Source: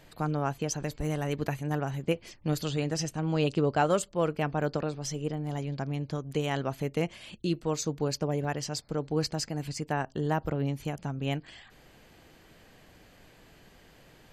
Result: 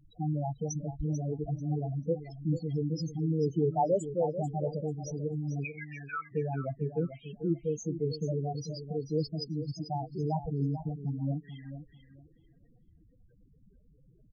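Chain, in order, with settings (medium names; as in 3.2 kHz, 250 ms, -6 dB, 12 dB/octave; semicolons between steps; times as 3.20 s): 5.64–6.31 s: resonant high-pass 2.5 kHz -> 1.2 kHz, resonance Q 15; loudest bins only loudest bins 4; feedback delay 441 ms, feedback 20%, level -11 dB; trim +1 dB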